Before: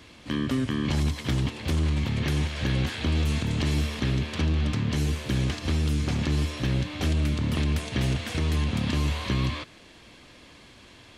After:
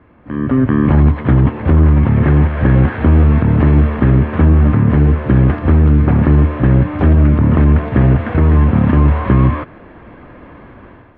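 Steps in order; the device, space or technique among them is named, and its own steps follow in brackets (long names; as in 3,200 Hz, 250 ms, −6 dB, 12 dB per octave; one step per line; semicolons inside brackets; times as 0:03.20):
action camera in a waterproof case (low-pass filter 1,600 Hz 24 dB per octave; automatic gain control gain up to 12.5 dB; level +3.5 dB; AAC 48 kbit/s 32,000 Hz)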